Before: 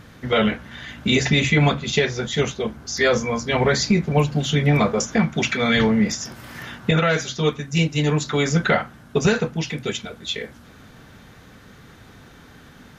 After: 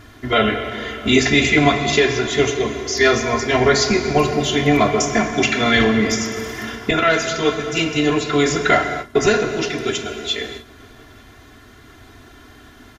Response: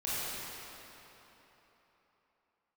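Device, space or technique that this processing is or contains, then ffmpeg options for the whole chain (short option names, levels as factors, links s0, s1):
keyed gated reverb: -filter_complex "[0:a]asettb=1/sr,asplit=3[s0][s1][s2];[s0]atrim=end=7.954[s3];[s1]atrim=start=7.95:end=8.37,asetpts=PTS-STARTPTS,afade=t=in:d=0.004:c=qsin,afade=t=out:st=0.416:d=0.004:c=qsin,acrossover=split=4900[s4][s5];[s5]acompressor=threshold=0.0112:ratio=4:attack=1:release=60[s6];[s4][s6]amix=inputs=2:normalize=0[s7];[s2]atrim=start=8.366[s8];[s3][s7]acrossfade=d=0.004:c1=hsin:c2=qsin[s9];[s9][s8]acrossfade=d=0.004:c1=qsin:c2=hsin,aecho=1:1:2.9:0.9,asplit=3[s10][s11][s12];[1:a]atrim=start_sample=2205[s13];[s11][s13]afir=irnorm=-1:irlink=0[s14];[s12]apad=whole_len=572673[s15];[s14][s15]sidechaingate=range=0.0224:threshold=0.00891:ratio=16:detection=peak,volume=0.282[s16];[s10][s16]amix=inputs=2:normalize=0"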